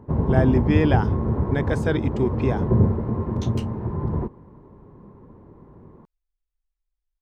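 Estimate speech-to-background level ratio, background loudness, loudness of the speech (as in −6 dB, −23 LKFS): −0.5 dB, −24.0 LKFS, −24.5 LKFS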